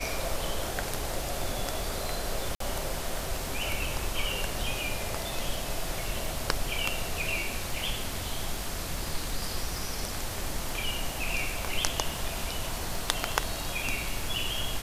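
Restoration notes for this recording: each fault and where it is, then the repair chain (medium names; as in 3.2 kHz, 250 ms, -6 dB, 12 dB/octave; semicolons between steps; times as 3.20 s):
crackle 33 per s -35 dBFS
2.55–2.60 s: dropout 53 ms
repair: de-click; interpolate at 2.55 s, 53 ms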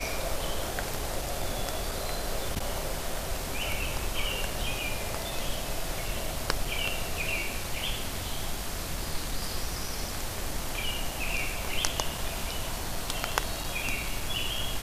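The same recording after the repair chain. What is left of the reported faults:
nothing left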